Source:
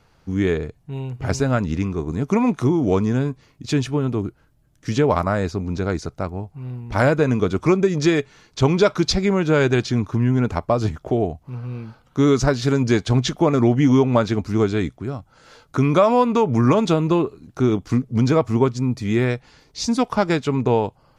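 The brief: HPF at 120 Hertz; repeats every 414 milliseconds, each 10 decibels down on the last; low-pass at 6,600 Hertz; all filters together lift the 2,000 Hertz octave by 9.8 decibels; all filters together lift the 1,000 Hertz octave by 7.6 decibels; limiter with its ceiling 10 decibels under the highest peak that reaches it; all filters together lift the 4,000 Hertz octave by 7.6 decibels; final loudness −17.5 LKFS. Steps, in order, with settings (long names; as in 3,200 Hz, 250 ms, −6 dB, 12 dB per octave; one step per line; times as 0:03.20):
high-pass filter 120 Hz
low-pass filter 6,600 Hz
parametric band 1,000 Hz +6.5 dB
parametric band 2,000 Hz +9 dB
parametric band 4,000 Hz +7 dB
brickwall limiter −5.5 dBFS
repeating echo 414 ms, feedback 32%, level −10 dB
level +2 dB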